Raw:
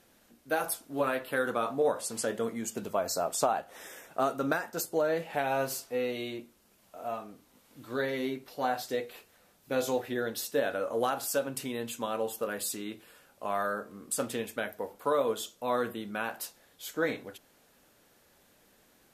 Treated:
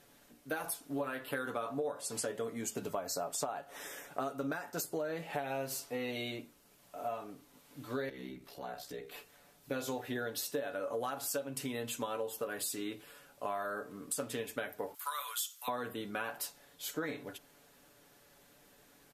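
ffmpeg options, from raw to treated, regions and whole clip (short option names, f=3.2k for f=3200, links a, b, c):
-filter_complex "[0:a]asettb=1/sr,asplit=3[a][b][c];[a]atrim=end=8.094[d];[b]atrim=start=8.09:end=9.12,asetpts=PTS-STARTPTS,afade=t=in:d=0.004:c=qsin,afade=t=out:st=1.026:d=0.004:c=qsin,afreqshift=-44,acompressor=threshold=-47dB:ratio=2:attack=3.2:release=140:knee=1:detection=peak,aeval=exprs='val(0)*sin(2*PI*32*n/s)':c=same[e];[c]atrim=start=9.116[f];[d][e]acrossfade=d=0.004:c1=hsin:c2=qsin[g];[g][f]acrossfade=d=0.004:c1=qsin:c2=hsin,asettb=1/sr,asplit=3[h][i][j];[h]atrim=end=14.944[k];[i]atrim=start=14.94:end=15.68,asetpts=PTS-STARTPTS,afade=t=in:d=0.004:c=qsin,afade=t=out:st=0.736:d=0.004:c=qsin,highpass=f=1.2k:w=0.5412,highpass=f=1.2k:w=1.3066,aemphasis=mode=production:type=50kf[l];[j]atrim=start=15.676[m];[k][l]acrossfade=d=0.004:c1=hsin:c2=qsin[n];[n][m]acrossfade=d=0.004:c1=qsin:c2=hsin,aecho=1:1:7:0.49,acompressor=threshold=-34dB:ratio=6"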